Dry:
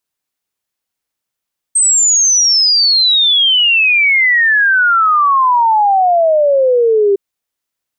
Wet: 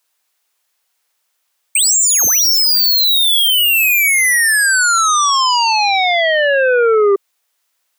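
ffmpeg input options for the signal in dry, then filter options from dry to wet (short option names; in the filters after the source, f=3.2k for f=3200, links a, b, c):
-f lavfi -i "aevalsrc='0.422*clip(min(t,5.41-t)/0.01,0,1)*sin(2*PI*8400*5.41/log(390/8400)*(exp(log(390/8400)*t/5.41)-1))':d=5.41:s=44100"
-filter_complex "[0:a]highpass=580,asplit=2[a][b];[b]aeval=exprs='0.447*sin(PI/2*3.98*val(0)/0.447)':c=same,volume=-6dB[c];[a][c]amix=inputs=2:normalize=0"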